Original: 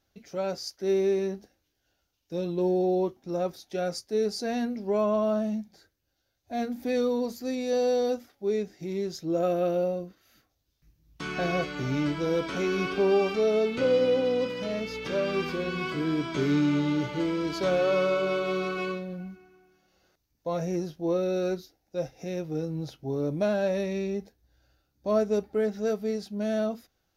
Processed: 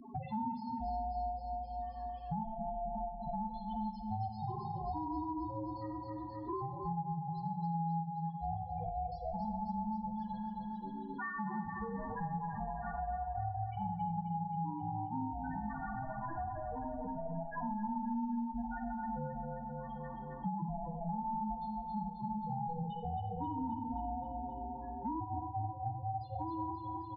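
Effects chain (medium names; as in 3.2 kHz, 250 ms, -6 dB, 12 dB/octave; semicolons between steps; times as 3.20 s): low-pass 7.2 kHz 12 dB/octave; bass shelf 170 Hz -8.5 dB; hum notches 50/100/150/200 Hz; compression 6:1, threshold -42 dBFS, peak gain reduction 19.5 dB; peak limiter -37 dBFS, peak gain reduction 6 dB; static phaser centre 1.3 kHz, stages 8; ring modulator 330 Hz; loudest bins only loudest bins 2; feedback delay 265 ms, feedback 50%, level -7.5 dB; reverberation RT60 0.55 s, pre-delay 33 ms, DRR 5.5 dB; three bands compressed up and down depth 100%; trim +14.5 dB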